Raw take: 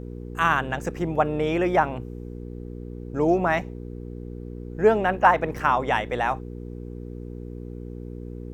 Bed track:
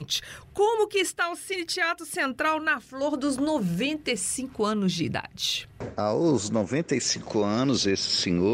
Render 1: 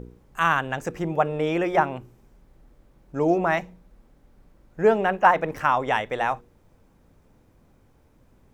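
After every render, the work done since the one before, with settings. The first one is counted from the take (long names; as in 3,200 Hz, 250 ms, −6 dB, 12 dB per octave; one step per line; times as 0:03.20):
hum removal 60 Hz, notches 8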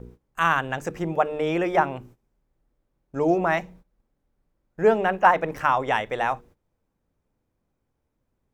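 mains-hum notches 50/100/150/200/250/300 Hz
noise gate −47 dBFS, range −17 dB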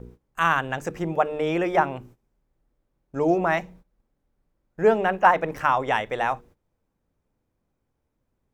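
no processing that can be heard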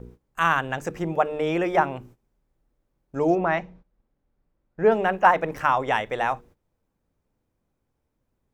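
0:03.35–0:04.92: high-frequency loss of the air 150 metres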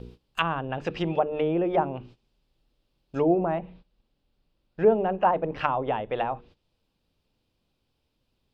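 flat-topped bell 3,600 Hz +14 dB 1.2 octaves
treble cut that deepens with the level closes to 710 Hz, closed at −19 dBFS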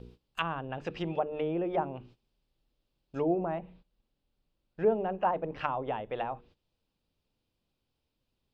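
level −6.5 dB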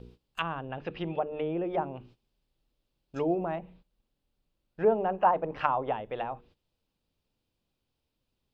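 0:00.69–0:01.64: low-pass filter 4,100 Hz 24 dB per octave
0:03.16–0:03.56: high-shelf EQ 3,000 Hz +11.5 dB
0:04.80–0:05.93: parametric band 1,000 Hz +6 dB 1.7 octaves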